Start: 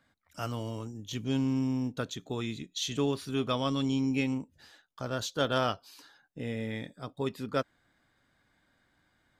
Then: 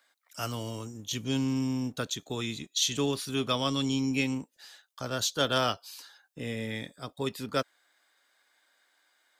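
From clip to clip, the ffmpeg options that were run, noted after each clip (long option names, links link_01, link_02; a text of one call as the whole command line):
ffmpeg -i in.wav -filter_complex "[0:a]highshelf=frequency=3000:gain=10.5,acrossover=split=400|750[link_01][link_02][link_03];[link_01]aeval=exprs='sgn(val(0))*max(abs(val(0))-0.001,0)':channel_layout=same[link_04];[link_04][link_02][link_03]amix=inputs=3:normalize=0" out.wav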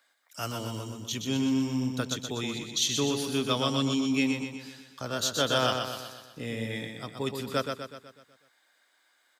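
ffmpeg -i in.wav -filter_complex "[0:a]highpass=54,asplit=2[link_01][link_02];[link_02]aecho=0:1:124|248|372|496|620|744|868:0.531|0.276|0.144|0.0746|0.0388|0.0202|0.0105[link_03];[link_01][link_03]amix=inputs=2:normalize=0" out.wav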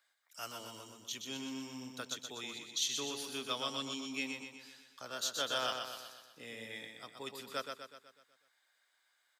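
ffmpeg -i in.wav -af "highpass=frequency=800:poles=1,volume=-7dB" out.wav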